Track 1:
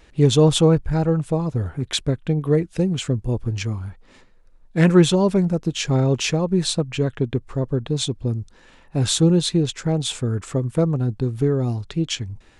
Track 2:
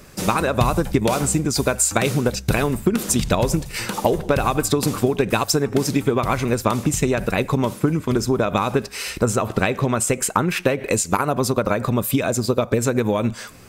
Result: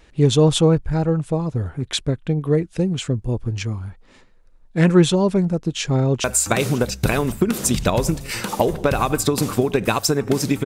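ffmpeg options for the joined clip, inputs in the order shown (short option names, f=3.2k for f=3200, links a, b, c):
-filter_complex "[0:a]apad=whole_dur=10.65,atrim=end=10.65,atrim=end=6.242[a];[1:a]atrim=start=1.688:end=6.1[b];[a][b]acrossfade=d=0.004:c1=hsin:c2=hsin,asplit=2[c][d];[d]afade=t=in:st=5.95:d=0.01,afade=t=out:st=6.24:d=0.01,aecho=0:1:540|1080|1620|2160|2700|3240|3780|4320|4860|5400:0.16788|0.12591|0.0944327|0.0708245|0.0531184|0.0398388|0.0298791|0.0224093|0.016807|0.0126052[e];[c][e]amix=inputs=2:normalize=0"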